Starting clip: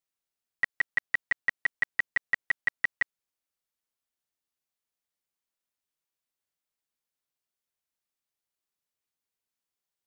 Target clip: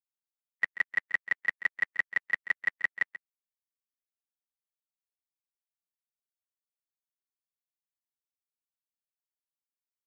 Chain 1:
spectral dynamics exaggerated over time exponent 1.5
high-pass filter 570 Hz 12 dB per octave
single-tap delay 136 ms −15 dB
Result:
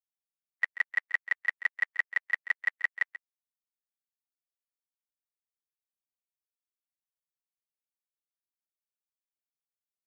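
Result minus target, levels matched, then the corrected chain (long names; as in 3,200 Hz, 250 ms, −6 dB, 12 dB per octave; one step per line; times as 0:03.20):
125 Hz band −19.5 dB
spectral dynamics exaggerated over time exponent 1.5
high-pass filter 160 Hz 12 dB per octave
single-tap delay 136 ms −15 dB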